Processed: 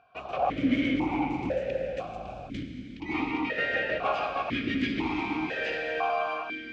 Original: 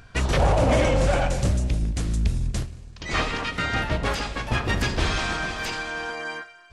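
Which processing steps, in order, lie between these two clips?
automatic gain control gain up to 12.5 dB
soft clipping −11 dBFS, distortion −13 dB
high-frequency loss of the air 97 metres
convolution reverb RT60 4.2 s, pre-delay 87 ms, DRR 5 dB
formant filter that steps through the vowels 2 Hz
level +2 dB

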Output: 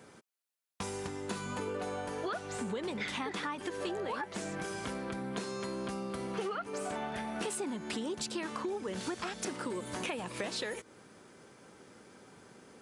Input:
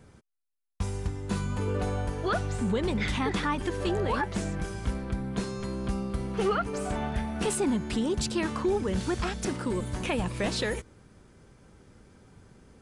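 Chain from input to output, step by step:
Bessel high-pass filter 320 Hz, order 2
downward compressor, threshold −39 dBFS, peak gain reduction 14.5 dB
level +4.5 dB

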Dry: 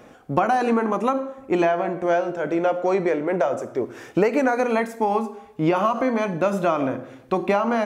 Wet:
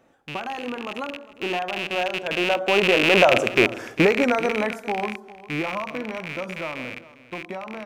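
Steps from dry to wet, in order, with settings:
loose part that buzzes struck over −35 dBFS, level −10 dBFS
source passing by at 0:03.43, 20 m/s, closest 8.1 metres
single-tap delay 403 ms −18 dB
level +6 dB

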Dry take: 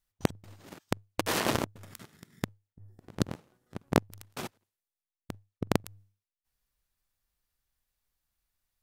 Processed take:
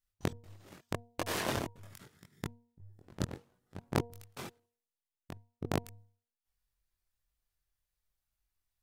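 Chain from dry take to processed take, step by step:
multi-voice chorus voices 6, 0.77 Hz, delay 22 ms, depth 1.6 ms
hum removal 236.4 Hz, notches 4
level −2.5 dB

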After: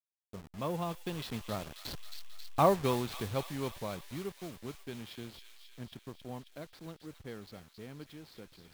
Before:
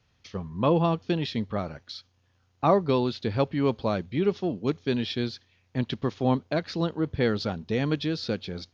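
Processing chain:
hold until the input has moved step −33 dBFS
source passing by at 0:02.31, 9 m/s, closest 4.5 metres
dynamic equaliser 290 Hz, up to −5 dB, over −42 dBFS, Q 0.81
on a send: delay with a high-pass on its return 269 ms, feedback 67%, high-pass 2,300 Hz, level −5 dB

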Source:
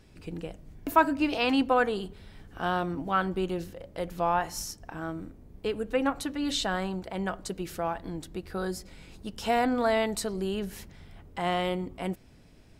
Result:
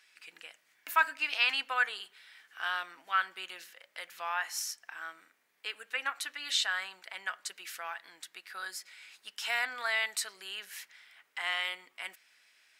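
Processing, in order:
high-pass with resonance 1,800 Hz, resonance Q 1.7

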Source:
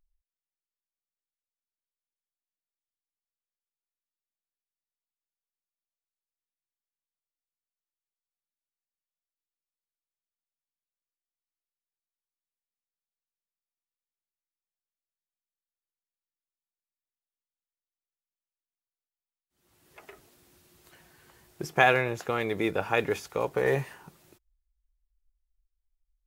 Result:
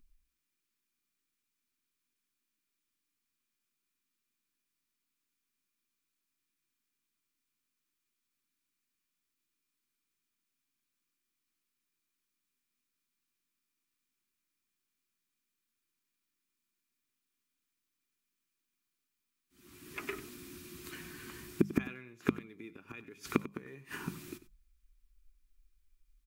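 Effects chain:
gate with flip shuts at −23 dBFS, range −34 dB
flat-topped bell 650 Hz −13 dB 1.1 octaves
mains-hum notches 50/100/150/200 Hz
hollow resonant body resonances 250/2,400 Hz, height 9 dB, ringing for 25 ms
on a send: single-tap delay 95 ms −15.5 dB
on the sum: level +9.5 dB

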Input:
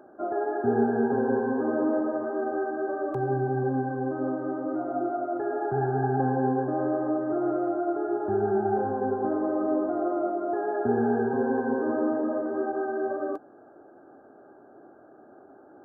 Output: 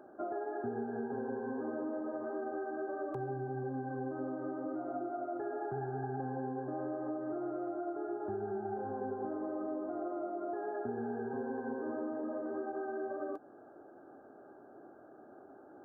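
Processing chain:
downward compressor 6 to 1, threshold −32 dBFS, peak gain reduction 13 dB
level −3.5 dB

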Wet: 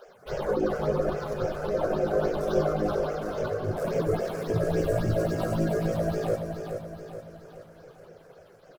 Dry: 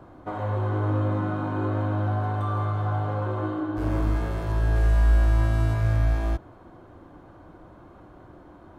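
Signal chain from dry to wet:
running median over 15 samples
on a send at −5 dB: convolution reverb RT60 2.3 s, pre-delay 6 ms
on the sum: dynamic equaliser 290 Hz, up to +5 dB, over −39 dBFS, Q 0.81
in parallel at −2 dB: brickwall limiter −17 dBFS, peak gain reduction 7.5 dB
on the sum: reverb reduction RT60 1.6 s
all-pass phaser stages 6, 3.6 Hz, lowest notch 210–1,100 Hz
gate on every frequency bin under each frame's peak −15 dB weak
graphic EQ with 10 bands 125 Hz +5 dB, 250 Hz −11 dB, 500 Hz +10 dB, 1,000 Hz −10 dB, 2,000 Hz −7 dB
repeating echo 425 ms, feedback 50%, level −7 dB
level +8.5 dB

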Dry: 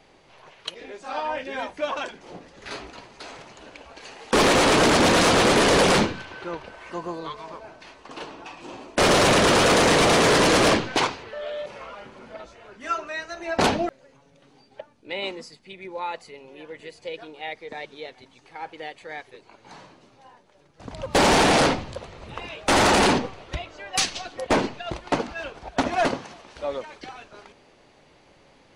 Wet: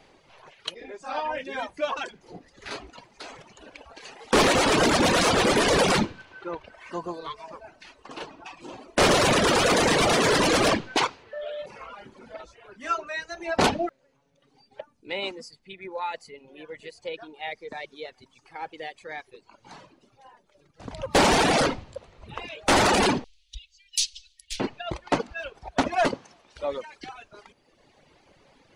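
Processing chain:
0:23.24–0:24.60: inverse Chebyshev band-stop filter 140–1,100 Hz, stop band 60 dB
reverb reduction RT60 1.3 s

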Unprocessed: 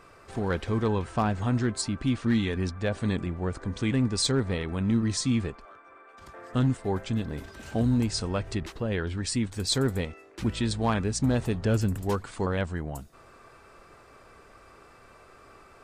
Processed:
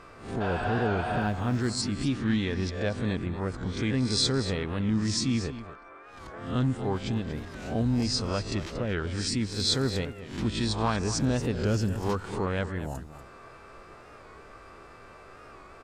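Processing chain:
peak hold with a rise ahead of every peak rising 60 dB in 0.43 s
dynamic equaliser 5,300 Hz, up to +6 dB, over −46 dBFS, Q 1.4
0:00.44–0:01.24: healed spectral selection 590–7,800 Hz after
in parallel at 0 dB: downward compressor, threshold −39 dBFS, peak gain reduction 20 dB
0:01.21–0:01.70: on the sum: floating-point word with a short mantissa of 4 bits
high-shelf EQ 8,500 Hz −11.5 dB
on a send: single-tap delay 235 ms −13 dB
on the sum: wow of a warped record 45 rpm, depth 100 cents
level −3.5 dB

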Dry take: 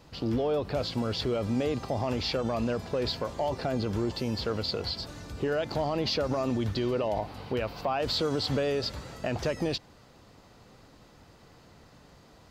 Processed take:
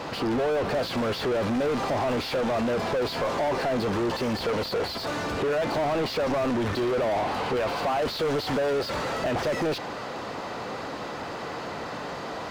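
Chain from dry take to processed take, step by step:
mid-hump overdrive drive 37 dB, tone 1,200 Hz, clips at −18 dBFS
low-shelf EQ 180 Hz −3.5 dB

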